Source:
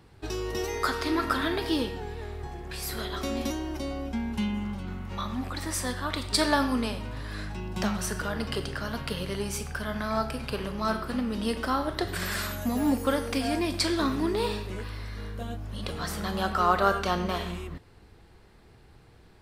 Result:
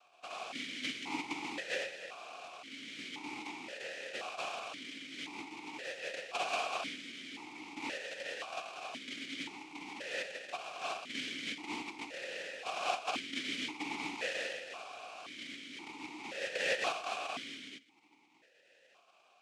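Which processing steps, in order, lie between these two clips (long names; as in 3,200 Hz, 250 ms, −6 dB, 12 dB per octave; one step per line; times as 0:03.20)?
compressing power law on the bin magnitudes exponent 0.5
cochlear-implant simulation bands 1
formant filter that steps through the vowels 1.9 Hz
level +4.5 dB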